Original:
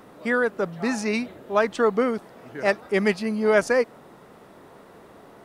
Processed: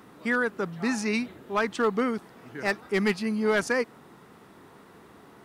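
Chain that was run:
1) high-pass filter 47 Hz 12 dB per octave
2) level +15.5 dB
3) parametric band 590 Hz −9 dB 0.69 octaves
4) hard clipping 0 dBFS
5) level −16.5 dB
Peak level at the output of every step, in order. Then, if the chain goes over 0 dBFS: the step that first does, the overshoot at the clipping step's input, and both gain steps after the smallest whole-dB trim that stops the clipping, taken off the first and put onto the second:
−6.0, +9.5, +7.5, 0.0, −16.5 dBFS
step 2, 7.5 dB
step 2 +7.5 dB, step 5 −8.5 dB

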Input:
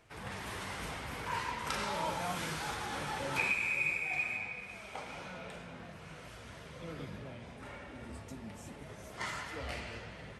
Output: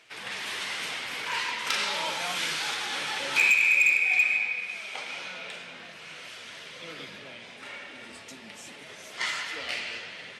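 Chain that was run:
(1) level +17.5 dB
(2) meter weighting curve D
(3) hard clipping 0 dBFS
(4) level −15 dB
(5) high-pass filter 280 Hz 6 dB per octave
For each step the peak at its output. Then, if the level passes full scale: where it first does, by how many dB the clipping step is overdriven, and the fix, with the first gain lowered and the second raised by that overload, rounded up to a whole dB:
−1.0, +8.0, 0.0, −15.0, −14.0 dBFS
step 2, 8.0 dB
step 1 +9.5 dB, step 4 −7 dB

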